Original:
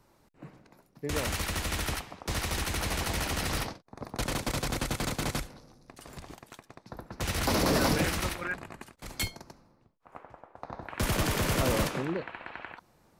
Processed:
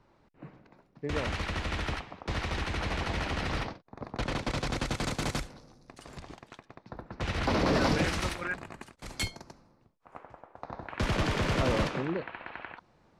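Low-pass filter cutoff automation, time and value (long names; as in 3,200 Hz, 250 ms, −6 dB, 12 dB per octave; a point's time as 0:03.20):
0:04.16 3,500 Hz
0:05.24 8,400 Hz
0:05.93 8,400 Hz
0:06.80 3,500 Hz
0:07.61 3,500 Hz
0:08.39 8,900 Hz
0:10.25 8,900 Hz
0:11.08 4,400 Hz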